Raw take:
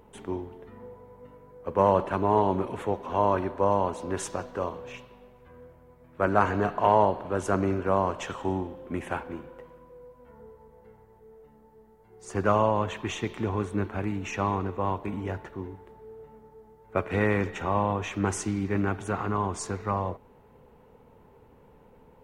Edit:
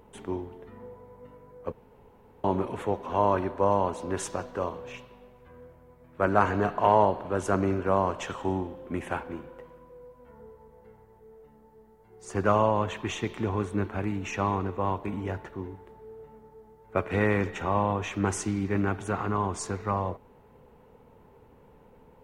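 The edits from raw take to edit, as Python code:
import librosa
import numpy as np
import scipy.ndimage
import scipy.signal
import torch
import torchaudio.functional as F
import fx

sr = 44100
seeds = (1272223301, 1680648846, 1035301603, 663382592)

y = fx.edit(x, sr, fx.room_tone_fill(start_s=1.72, length_s=0.72), tone=tone)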